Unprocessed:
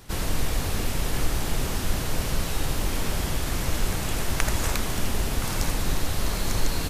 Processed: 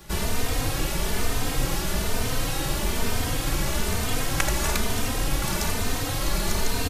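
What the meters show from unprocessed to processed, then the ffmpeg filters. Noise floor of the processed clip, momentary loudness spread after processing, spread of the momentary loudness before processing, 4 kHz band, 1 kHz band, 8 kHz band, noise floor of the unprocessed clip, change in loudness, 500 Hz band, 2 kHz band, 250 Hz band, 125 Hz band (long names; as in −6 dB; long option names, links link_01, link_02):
−28 dBFS, 2 LU, 2 LU, +2.5 dB, +2.5 dB, +2.5 dB, −29 dBFS, +1.5 dB, +2.5 dB, +2.5 dB, +1.5 dB, 0.0 dB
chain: -filter_complex "[0:a]acrossover=split=250|4500[link_01][link_02][link_03];[link_01]alimiter=limit=-21.5dB:level=0:latency=1[link_04];[link_04][link_02][link_03]amix=inputs=3:normalize=0,asplit=2[link_05][link_06];[link_06]adelay=3.1,afreqshift=1.1[link_07];[link_05][link_07]amix=inputs=2:normalize=1,volume=5.5dB"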